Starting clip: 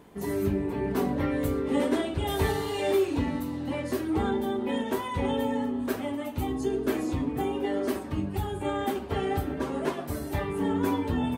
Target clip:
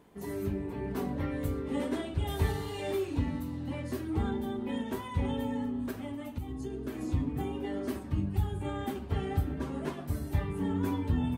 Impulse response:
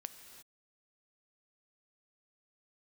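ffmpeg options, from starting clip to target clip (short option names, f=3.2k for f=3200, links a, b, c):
-filter_complex "[0:a]asubboost=boost=3:cutoff=230,asettb=1/sr,asplit=3[a][b][c];[a]atrim=end=5.894[d];[b]atrim=start=5.89:end=7.01,asetpts=PTS-STARTPTS,afade=t=in:d=0.004:c=qsin,afade=t=out:st=1.116:d=0.004:c=qsin,acompressor=threshold=-26dB:ratio=12[e];[c]atrim=start=7.006[f];[d][e]acrossfade=d=0.004:c1=hsin:c2=qsin[g];[g][f]acrossfade=d=0.004:c1=qsin:c2=hsin,volume=-7dB"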